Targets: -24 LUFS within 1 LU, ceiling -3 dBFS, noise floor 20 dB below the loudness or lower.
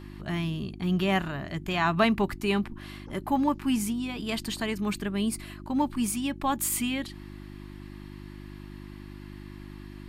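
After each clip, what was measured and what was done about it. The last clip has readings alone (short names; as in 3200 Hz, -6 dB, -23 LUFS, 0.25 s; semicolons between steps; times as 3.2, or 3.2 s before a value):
hum 50 Hz; harmonics up to 350 Hz; hum level -41 dBFS; loudness -29.0 LUFS; peak -11.0 dBFS; loudness target -24.0 LUFS
-> de-hum 50 Hz, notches 7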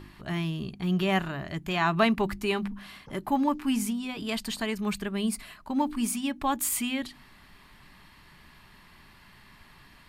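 hum none; loudness -29.0 LUFS; peak -11.0 dBFS; loudness target -24.0 LUFS
-> gain +5 dB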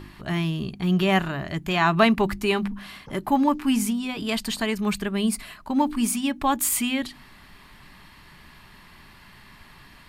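loudness -24.0 LUFS; peak -6.0 dBFS; noise floor -50 dBFS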